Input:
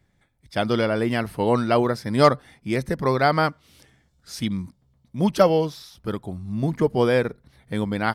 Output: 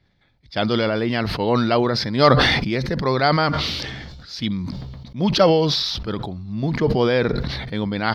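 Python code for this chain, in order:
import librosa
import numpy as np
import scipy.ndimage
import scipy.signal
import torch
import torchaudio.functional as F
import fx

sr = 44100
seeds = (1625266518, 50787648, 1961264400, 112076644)

y = fx.high_shelf_res(x, sr, hz=6400.0, db=-14.0, q=3.0)
y = fx.sustainer(y, sr, db_per_s=29.0)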